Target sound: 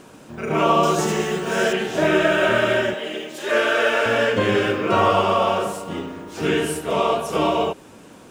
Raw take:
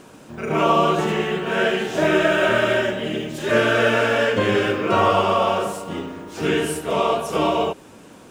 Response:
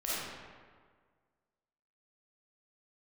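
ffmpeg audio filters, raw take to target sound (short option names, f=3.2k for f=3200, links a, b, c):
-filter_complex "[0:a]asettb=1/sr,asplit=3[a][b][c];[a]atrim=end=0.834[d];[b]atrim=start=0.83:end=1.73,asetpts=PTS-STARTPTS,afade=t=in:d=0.004:c=qsin,afade=t=out:st=0.896:d=0.004:c=qsin,highshelf=f=4.1k:t=q:w=1.5:g=9.5[e];[c]atrim=start=1.726[f];[d][e]acrossfade=d=0.004:c1=hsin:c2=qsin[g];[g][f]acrossfade=d=0.004:c1=qsin:c2=hsin,asettb=1/sr,asplit=3[h][i][j];[h]atrim=end=2.944[k];[i]atrim=start=2.94:end=4.06,asetpts=PTS-STARTPTS,afade=t=in:d=0.004:c=qsin,afade=t=out:st=1.116:d=0.004:c=qsin,highpass=410[l];[j]atrim=start=4.056[m];[k][l]acrossfade=d=0.004:c1=hsin:c2=qsin[n];[n][m]acrossfade=d=0.004:c1=qsin:c2=hsin"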